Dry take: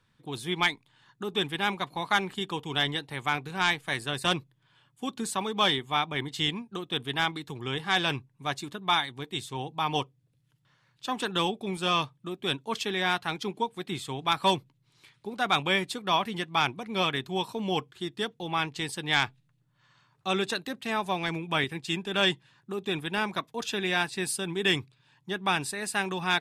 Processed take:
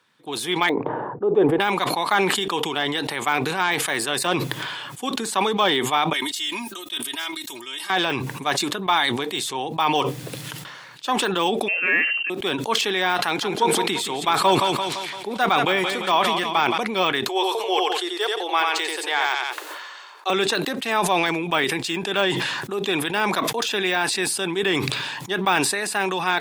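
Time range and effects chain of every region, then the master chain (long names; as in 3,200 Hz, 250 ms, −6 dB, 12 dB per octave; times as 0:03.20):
0:00.69–0:01.60: low-pass that shuts in the quiet parts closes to 850 Hz, open at −29 dBFS + drawn EQ curve 250 Hz 0 dB, 490 Hz +9 dB, 4,000 Hz −30 dB
0:06.13–0:07.90: first-order pre-emphasis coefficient 0.9 + comb filter 3.2 ms, depth 81%
0:11.68–0:12.30: voice inversion scrambler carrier 2,900 Hz + low-shelf EQ 210 Hz −5 dB
0:13.19–0:16.78: upward compression, threshold −43 dBFS + repeating echo 171 ms, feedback 46%, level −10.5 dB
0:17.28–0:20.30: elliptic high-pass filter 360 Hz, stop band 50 dB + repeating echo 89 ms, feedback 16%, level −3.5 dB
whole clip: de-essing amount 95%; high-pass filter 330 Hz 12 dB per octave; level that may fall only so fast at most 27 dB per second; level +8.5 dB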